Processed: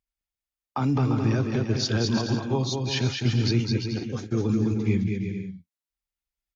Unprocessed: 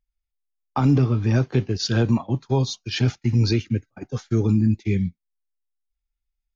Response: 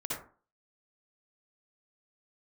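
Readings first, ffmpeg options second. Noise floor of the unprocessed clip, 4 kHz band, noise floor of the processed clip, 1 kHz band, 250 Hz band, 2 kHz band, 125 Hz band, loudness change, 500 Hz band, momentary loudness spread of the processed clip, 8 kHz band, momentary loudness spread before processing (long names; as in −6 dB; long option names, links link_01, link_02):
−83 dBFS, +0.5 dB, below −85 dBFS, −2.0 dB, −2.5 dB, −1.0 dB, −4.0 dB, −3.5 dB, −2.0 dB, 7 LU, can't be measured, 9 LU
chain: -af "highpass=frequency=130:poles=1,alimiter=limit=-15dB:level=0:latency=1:release=30,aecho=1:1:210|346.5|435.2|492.9|530.4:0.631|0.398|0.251|0.158|0.1,volume=-1.5dB"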